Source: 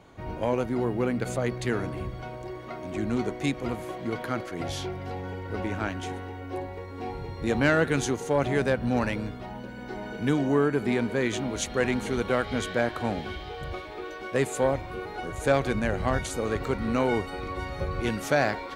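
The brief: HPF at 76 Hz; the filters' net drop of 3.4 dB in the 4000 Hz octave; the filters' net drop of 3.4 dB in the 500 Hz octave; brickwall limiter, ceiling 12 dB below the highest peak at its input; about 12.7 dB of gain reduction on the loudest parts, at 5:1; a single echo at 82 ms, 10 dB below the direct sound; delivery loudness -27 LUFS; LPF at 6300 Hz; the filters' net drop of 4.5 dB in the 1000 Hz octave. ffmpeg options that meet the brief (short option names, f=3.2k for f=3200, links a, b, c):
-af "highpass=76,lowpass=6.3k,equalizer=f=500:t=o:g=-3,equalizer=f=1k:t=o:g=-5,equalizer=f=4k:t=o:g=-3.5,acompressor=threshold=-35dB:ratio=5,alimiter=level_in=8dB:limit=-24dB:level=0:latency=1,volume=-8dB,aecho=1:1:82:0.316,volume=14.5dB"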